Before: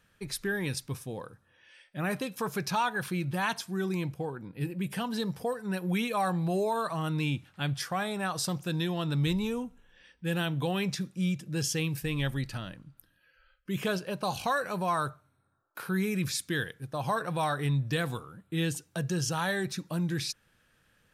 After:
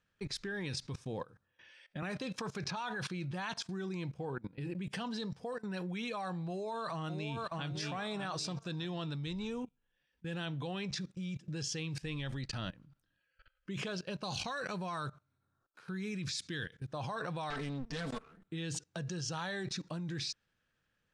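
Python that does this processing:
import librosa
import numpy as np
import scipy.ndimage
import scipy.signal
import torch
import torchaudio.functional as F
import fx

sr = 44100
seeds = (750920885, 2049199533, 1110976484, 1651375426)

y = fx.band_squash(x, sr, depth_pct=100, at=(2.02, 2.77))
y = fx.echo_throw(y, sr, start_s=6.49, length_s=1.16, ms=600, feedback_pct=35, wet_db=-7.0)
y = fx.peak_eq(y, sr, hz=750.0, db=-5.0, octaves=2.0, at=(13.95, 16.89))
y = fx.lower_of_two(y, sr, delay_ms=4.5, at=(17.5, 18.48))
y = fx.edit(y, sr, fx.fade_in_from(start_s=9.65, length_s=1.83, floor_db=-14.5), tone=tone)
y = scipy.signal.sosfilt(scipy.signal.butter(4, 7300.0, 'lowpass', fs=sr, output='sos'), y)
y = fx.dynamic_eq(y, sr, hz=4500.0, q=1.5, threshold_db=-50.0, ratio=4.0, max_db=4)
y = fx.level_steps(y, sr, step_db=21)
y = y * librosa.db_to_amplitude(3.5)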